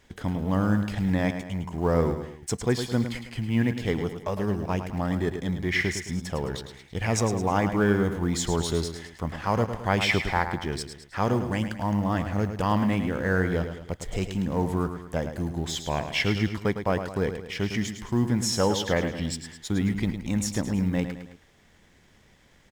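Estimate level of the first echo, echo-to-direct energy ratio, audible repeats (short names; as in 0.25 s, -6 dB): -9.0 dB, -8.0 dB, 3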